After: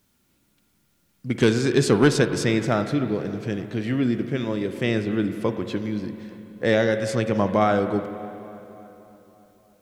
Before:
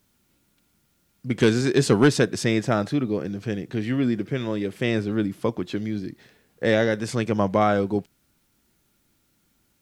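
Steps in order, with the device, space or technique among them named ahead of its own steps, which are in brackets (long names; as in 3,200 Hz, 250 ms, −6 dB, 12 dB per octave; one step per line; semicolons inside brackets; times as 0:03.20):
dub delay into a spring reverb (feedback echo with a low-pass in the loop 289 ms, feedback 64%, low-pass 2,800 Hz, level −19 dB; spring reverb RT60 2.8 s, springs 42/53 ms, chirp 50 ms, DRR 9.5 dB)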